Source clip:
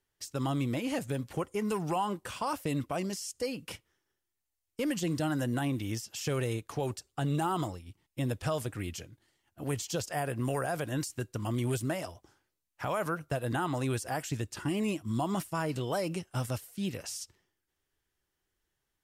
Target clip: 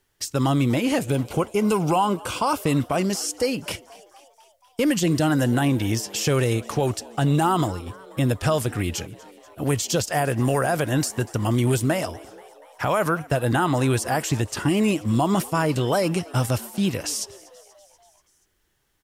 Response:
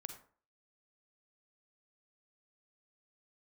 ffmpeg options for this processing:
-filter_complex "[0:a]asplit=2[a][b];[b]alimiter=level_in=4dB:limit=-24dB:level=0:latency=1:release=175,volume=-4dB,volume=-2.5dB[c];[a][c]amix=inputs=2:normalize=0,asettb=1/sr,asplit=3[d][e][f];[d]atrim=end=1.104[g];[e]atrim=start=1.1:end=2.62,asetpts=PTS-STARTPTS,afade=t=in:d=0.004:c=qsin,afade=t=out:st=1.516:d=0.004:c=qsin,asuperstop=centerf=1800:order=4:qfactor=4.7[h];[f]atrim=start=2.616[i];[g][h]acrossfade=d=0.004:c1=hsin:c2=qsin[j];[j][i]acrossfade=d=0.004:c1=qsin:c2=hsin,asplit=6[k][l][m][n][o][p];[l]adelay=241,afreqshift=100,volume=-22dB[q];[m]adelay=482,afreqshift=200,volume=-25.7dB[r];[n]adelay=723,afreqshift=300,volume=-29.5dB[s];[o]adelay=964,afreqshift=400,volume=-33.2dB[t];[p]adelay=1205,afreqshift=500,volume=-37dB[u];[k][q][r][s][t][u]amix=inputs=6:normalize=0,volume=7.5dB"

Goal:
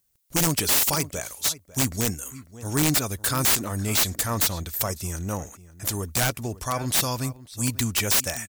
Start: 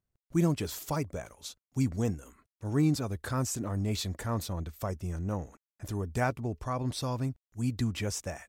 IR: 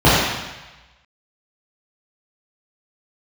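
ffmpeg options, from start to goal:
-filter_complex "[0:a]crystalizer=i=8.5:c=0,asplit=2[a][b];[b]adelay=548.1,volume=-17dB,highshelf=f=4k:g=-12.3[c];[a][c]amix=inputs=2:normalize=0,aeval=exprs='(mod(6.68*val(0)+1,2)-1)/6.68':c=same,volume=2.5dB"

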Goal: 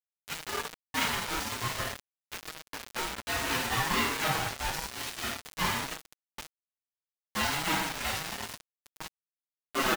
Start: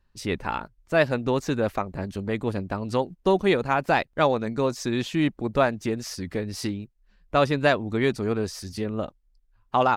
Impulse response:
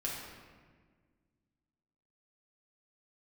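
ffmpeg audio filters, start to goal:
-filter_complex "[0:a]aeval=exprs='val(0)+0.5*0.0841*sgn(val(0))':c=same,agate=range=-33dB:threshold=-15dB:ratio=3:detection=peak,aresample=16000,asoftclip=type=hard:threshold=-21.5dB,aresample=44100,adynamicsmooth=sensitivity=3.5:basefreq=5.3k,afreqshift=-69,highpass=900,bandreject=f=2.7k:w=28,asplit=2[a][b];[b]adelay=530.6,volume=-29dB,highshelf=f=4k:g=-11.9[c];[a][c]amix=inputs=2:normalize=0[d];[1:a]atrim=start_sample=2205,asetrate=66150,aresample=44100[e];[d][e]afir=irnorm=-1:irlink=0,acrusher=bits=5:mix=0:aa=0.000001,aecho=1:1:6.3:0.71,aeval=exprs='val(0)*sin(2*PI*460*n/s+460*0.3/0.58*sin(2*PI*0.58*n/s))':c=same,volume=4dB"

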